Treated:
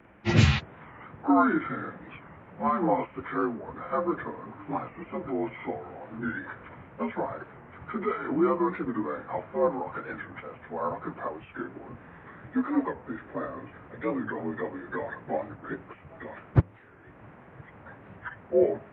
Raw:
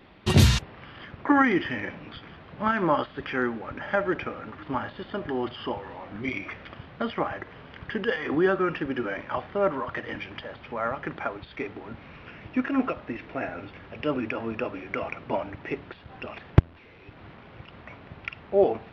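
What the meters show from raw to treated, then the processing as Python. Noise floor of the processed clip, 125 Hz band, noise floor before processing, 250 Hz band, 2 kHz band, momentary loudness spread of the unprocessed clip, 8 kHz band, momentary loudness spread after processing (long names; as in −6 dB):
−52 dBFS, −2.5 dB, −49 dBFS, −1.0 dB, −5.5 dB, 20 LU, can't be measured, 21 LU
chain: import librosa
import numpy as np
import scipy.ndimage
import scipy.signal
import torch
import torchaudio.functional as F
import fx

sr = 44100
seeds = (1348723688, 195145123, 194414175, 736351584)

y = fx.partial_stretch(x, sr, pct=85)
y = fx.record_warp(y, sr, rpm=45.0, depth_cents=160.0)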